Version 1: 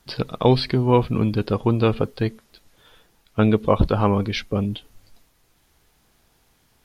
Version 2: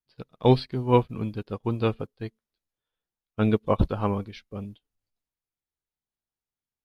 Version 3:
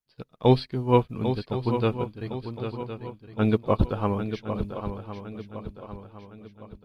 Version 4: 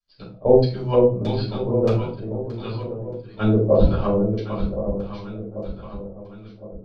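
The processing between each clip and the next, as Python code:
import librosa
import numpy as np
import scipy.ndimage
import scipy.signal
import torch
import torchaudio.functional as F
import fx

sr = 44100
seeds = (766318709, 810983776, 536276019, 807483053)

y1 = fx.transient(x, sr, attack_db=-2, sustain_db=3)
y1 = fx.upward_expand(y1, sr, threshold_db=-37.0, expansion=2.5)
y2 = fx.echo_swing(y1, sr, ms=1061, ratio=3, feedback_pct=42, wet_db=-9.0)
y3 = fx.filter_lfo_lowpass(y2, sr, shape='square', hz=1.6, low_hz=550.0, high_hz=4700.0, q=2.8)
y3 = fx.room_shoebox(y3, sr, seeds[0], volume_m3=230.0, walls='furnished', distance_m=6.0)
y3 = y3 * librosa.db_to_amplitude(-9.0)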